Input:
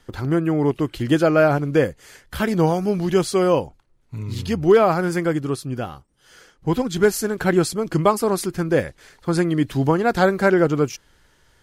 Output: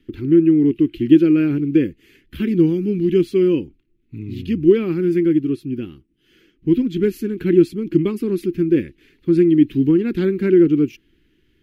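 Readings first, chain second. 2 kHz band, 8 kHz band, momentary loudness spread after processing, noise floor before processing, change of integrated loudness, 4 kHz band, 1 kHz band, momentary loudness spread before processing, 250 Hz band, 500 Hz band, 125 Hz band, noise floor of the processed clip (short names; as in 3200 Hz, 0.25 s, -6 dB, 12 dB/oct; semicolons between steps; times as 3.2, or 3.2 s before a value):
-9.5 dB, under -15 dB, 12 LU, -59 dBFS, +3.0 dB, n/a, under -20 dB, 13 LU, +6.5 dB, 0.0 dB, -1.0 dB, -62 dBFS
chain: EQ curve 130 Hz 0 dB, 340 Hz +13 dB, 670 Hz -27 dB, 1400 Hz -12 dB, 2600 Hz +4 dB, 5200 Hz -13 dB, 8500 Hz -18 dB, 14000 Hz -4 dB; gain -3.5 dB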